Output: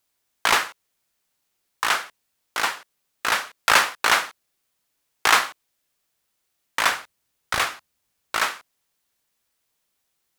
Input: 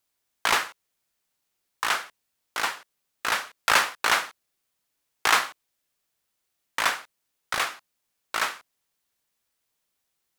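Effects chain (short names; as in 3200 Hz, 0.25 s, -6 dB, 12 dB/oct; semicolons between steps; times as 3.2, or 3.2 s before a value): 6.9–8.37 bell 71 Hz +9 dB 2 oct; gain +3.5 dB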